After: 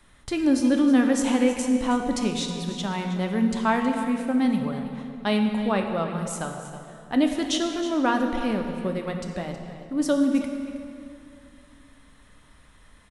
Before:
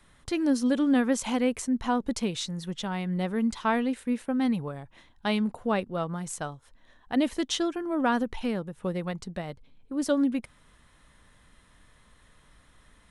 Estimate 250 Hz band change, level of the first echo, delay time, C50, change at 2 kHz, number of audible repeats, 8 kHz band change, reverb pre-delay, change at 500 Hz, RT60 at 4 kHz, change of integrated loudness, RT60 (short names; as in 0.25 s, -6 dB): +4.5 dB, -13.5 dB, 0.319 s, 5.0 dB, +3.5 dB, 1, +3.5 dB, 3 ms, +3.5 dB, 1.8 s, +4.0 dB, 2.5 s